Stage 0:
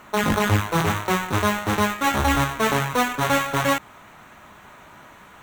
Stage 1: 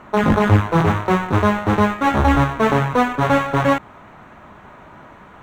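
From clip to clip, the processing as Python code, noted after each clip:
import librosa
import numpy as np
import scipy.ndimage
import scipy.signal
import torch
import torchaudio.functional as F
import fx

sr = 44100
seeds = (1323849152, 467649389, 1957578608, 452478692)

y = fx.lowpass(x, sr, hz=1000.0, slope=6)
y = F.gain(torch.from_numpy(y), 7.0).numpy()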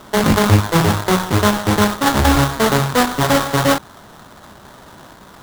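y = fx.sample_hold(x, sr, seeds[0], rate_hz=2500.0, jitter_pct=20)
y = F.gain(torch.from_numpy(y), 1.5).numpy()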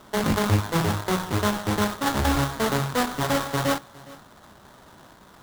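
y = x + 10.0 ** (-21.0 / 20.0) * np.pad(x, (int(412 * sr / 1000.0), 0))[:len(x)]
y = F.gain(torch.from_numpy(y), -9.0).numpy()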